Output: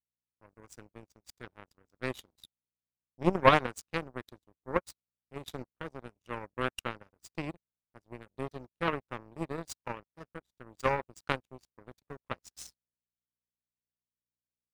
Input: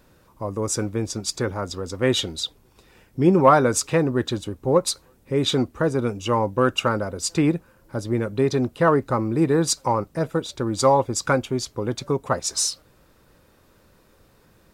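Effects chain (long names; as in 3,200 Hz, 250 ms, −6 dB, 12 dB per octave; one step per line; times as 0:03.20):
mains hum 60 Hz, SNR 17 dB
power curve on the samples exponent 3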